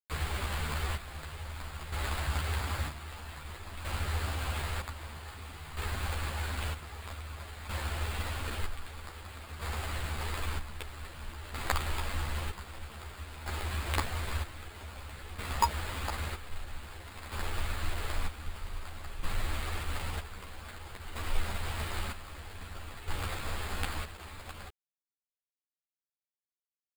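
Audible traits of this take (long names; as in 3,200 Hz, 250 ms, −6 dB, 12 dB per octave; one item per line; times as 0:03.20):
a quantiser's noise floor 6 bits, dither none
chopped level 0.52 Hz, depth 65%, duty 50%
aliases and images of a low sample rate 5,900 Hz, jitter 0%
a shimmering, thickened sound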